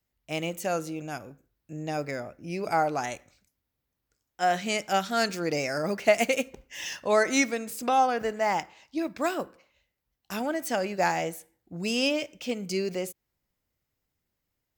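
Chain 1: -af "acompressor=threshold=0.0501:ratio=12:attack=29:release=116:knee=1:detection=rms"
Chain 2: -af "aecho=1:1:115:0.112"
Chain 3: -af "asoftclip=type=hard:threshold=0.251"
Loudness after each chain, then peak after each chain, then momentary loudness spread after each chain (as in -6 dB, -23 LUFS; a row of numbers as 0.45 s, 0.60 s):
-31.5 LUFS, -28.5 LUFS, -28.5 LUFS; -13.5 dBFS, -8.0 dBFS, -12.0 dBFS; 9 LU, 13 LU, 13 LU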